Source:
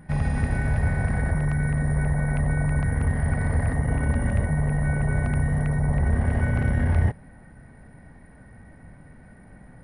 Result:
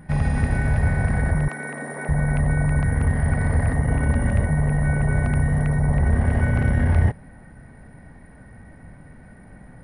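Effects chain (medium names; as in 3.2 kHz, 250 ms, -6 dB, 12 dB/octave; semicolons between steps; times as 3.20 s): 1.48–2.09 s: high-pass 260 Hz 24 dB/octave; trim +3 dB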